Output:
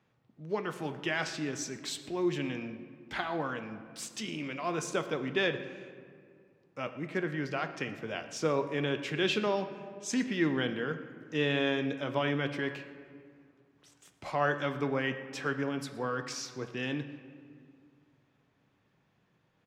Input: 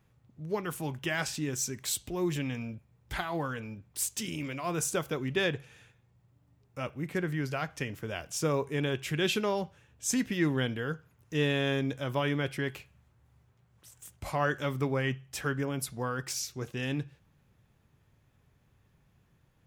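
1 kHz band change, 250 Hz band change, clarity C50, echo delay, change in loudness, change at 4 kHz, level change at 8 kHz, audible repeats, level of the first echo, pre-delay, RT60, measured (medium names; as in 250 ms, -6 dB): +0.5 dB, -0.5 dB, 10.5 dB, 119 ms, -1.0 dB, -0.5 dB, -7.5 dB, 1, -20.0 dB, 6 ms, 2.1 s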